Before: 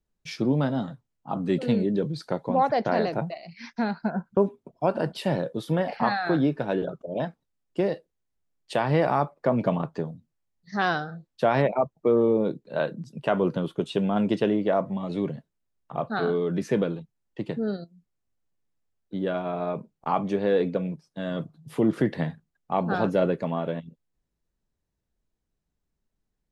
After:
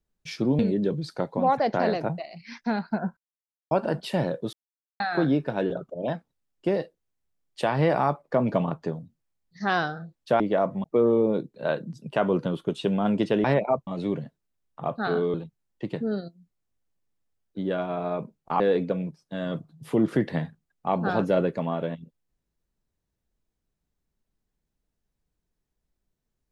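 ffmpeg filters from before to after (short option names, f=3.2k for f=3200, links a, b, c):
-filter_complex "[0:a]asplit=12[a][b][c][d][e][f][g][h][i][j][k][l];[a]atrim=end=0.592[m];[b]atrim=start=1.708:end=4.29,asetpts=PTS-STARTPTS,afade=t=out:st=2.578:d=0.004:c=hsin[n];[c]atrim=start=4.29:end=4.83,asetpts=PTS-STARTPTS,volume=0[o];[d]atrim=start=4.83:end=5.65,asetpts=PTS-STARTPTS,afade=t=in:d=0.004:c=hsin,afade=t=out:st=0.816:d=0.004:c=hsin[p];[e]atrim=start=5.65:end=6.12,asetpts=PTS-STARTPTS,volume=0[q];[f]atrim=start=6.12:end=11.522,asetpts=PTS-STARTPTS,afade=t=in:d=0.004:c=hsin[r];[g]atrim=start=14.548:end=14.992[s];[h]atrim=start=11.948:end=14.552[t];[i]atrim=start=11.518:end=11.952[u];[j]atrim=start=14.988:end=16.462[v];[k]atrim=start=16.898:end=20.162[w];[l]atrim=start=20.448[x];[n][o][p][q][r]concat=n=5:v=0:a=1[y];[m][y]acrossfade=d=0.004:c1=hsin:c2=hsin[z];[z][s]acrossfade=d=0.004:c1=hsin:c2=hsin[aa];[aa][t]acrossfade=d=0.004:c1=hsin:c2=hsin[ab];[ab][u]acrossfade=d=0.004:c1=hsin:c2=hsin[ac];[ac][v]acrossfade=d=0.004:c1=hsin:c2=hsin[ad];[ad][w]acrossfade=d=0.004:c1=hsin:c2=hsin[ae];[ae][x]acrossfade=d=0.004:c1=hsin:c2=hsin"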